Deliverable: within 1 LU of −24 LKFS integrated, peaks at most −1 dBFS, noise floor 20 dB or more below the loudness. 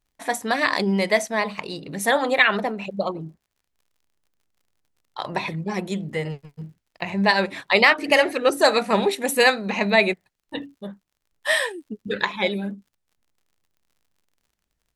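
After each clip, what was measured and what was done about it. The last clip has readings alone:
crackle rate 56 per second; integrated loudness −21.5 LKFS; sample peak −2.0 dBFS; target loudness −24.0 LKFS
→ click removal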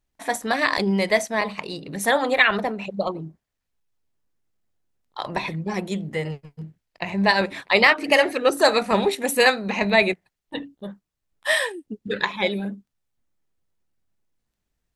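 crackle rate 0.33 per second; integrated loudness −21.5 LKFS; sample peak −1.5 dBFS; target loudness −24.0 LKFS
→ level −2.5 dB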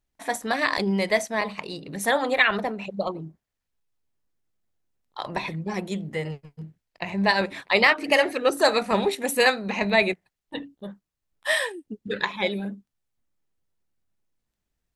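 integrated loudness −24.0 LKFS; sample peak −4.0 dBFS; background noise floor −83 dBFS

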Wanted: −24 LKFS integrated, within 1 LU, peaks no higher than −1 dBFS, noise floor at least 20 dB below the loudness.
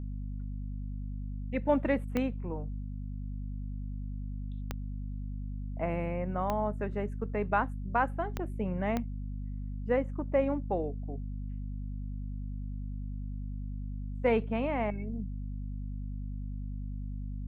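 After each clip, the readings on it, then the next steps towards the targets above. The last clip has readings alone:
number of clicks 5; mains hum 50 Hz; hum harmonics up to 250 Hz; level of the hum −34 dBFS; integrated loudness −35.0 LKFS; sample peak −14.5 dBFS; target loudness −24.0 LKFS
→ click removal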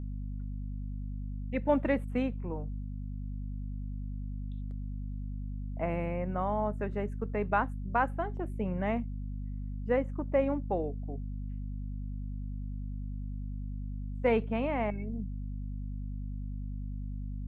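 number of clicks 0; mains hum 50 Hz; hum harmonics up to 250 Hz; level of the hum −34 dBFS
→ hum removal 50 Hz, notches 5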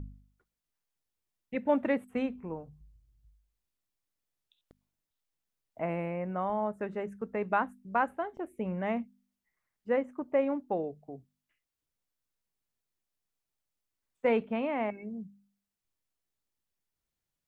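mains hum none found; integrated loudness −33.0 LKFS; sample peak −15.5 dBFS; target loudness −24.0 LKFS
→ level +9 dB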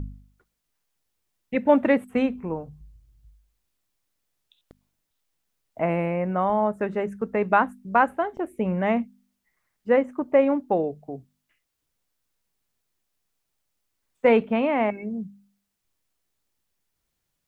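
integrated loudness −24.0 LKFS; sample peak −6.5 dBFS; background noise floor −79 dBFS

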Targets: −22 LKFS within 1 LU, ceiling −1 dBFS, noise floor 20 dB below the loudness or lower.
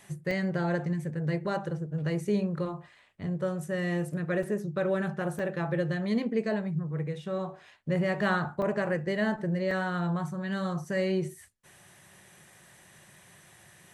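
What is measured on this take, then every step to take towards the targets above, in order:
number of dropouts 5; longest dropout 3.0 ms; integrated loudness −31.0 LKFS; sample peak −14.5 dBFS; target loudness −22.0 LKFS
→ repair the gap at 0:00.31/0:04.43/0:05.39/0:08.62/0:09.71, 3 ms
level +9 dB

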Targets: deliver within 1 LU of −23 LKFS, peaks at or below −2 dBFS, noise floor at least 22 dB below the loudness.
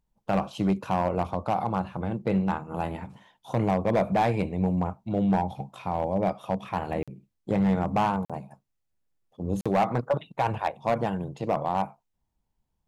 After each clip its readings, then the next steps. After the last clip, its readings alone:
share of clipped samples 0.9%; peaks flattened at −17.0 dBFS; number of dropouts 3; longest dropout 46 ms; integrated loudness −28.0 LKFS; sample peak −17.0 dBFS; target loudness −23.0 LKFS
→ clipped peaks rebuilt −17 dBFS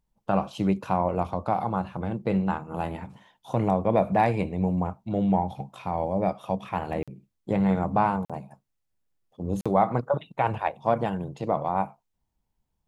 share of clipped samples 0.0%; number of dropouts 3; longest dropout 46 ms
→ repair the gap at 0:07.03/0:08.25/0:09.61, 46 ms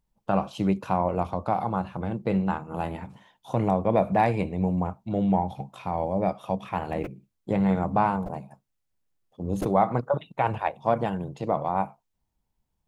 number of dropouts 0; integrated loudness −27.0 LKFS; sample peak −8.5 dBFS; target loudness −23.0 LKFS
→ level +4 dB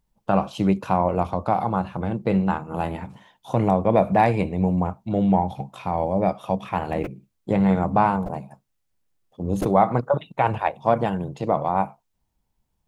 integrated loudness −23.0 LKFS; sample peak −4.5 dBFS; background noise floor −74 dBFS

